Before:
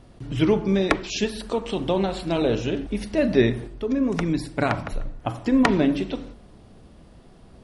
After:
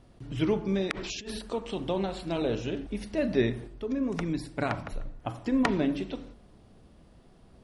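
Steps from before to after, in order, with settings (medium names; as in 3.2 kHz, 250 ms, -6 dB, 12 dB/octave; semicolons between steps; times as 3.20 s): 0.91–1.39 s: compressor with a negative ratio -32 dBFS, ratio -1; trim -7 dB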